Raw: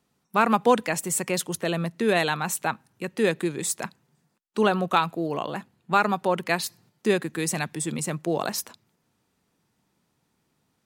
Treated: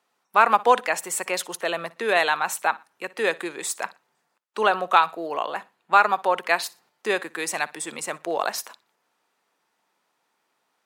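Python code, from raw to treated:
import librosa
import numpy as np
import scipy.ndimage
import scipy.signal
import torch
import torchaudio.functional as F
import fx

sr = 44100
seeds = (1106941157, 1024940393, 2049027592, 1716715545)

p1 = scipy.signal.sosfilt(scipy.signal.butter(2, 700.0, 'highpass', fs=sr, output='sos'), x)
p2 = fx.high_shelf(p1, sr, hz=3100.0, db=-9.5)
p3 = p2 + fx.echo_feedback(p2, sr, ms=60, feedback_pct=28, wet_db=-21.0, dry=0)
y = p3 * librosa.db_to_amplitude(7.0)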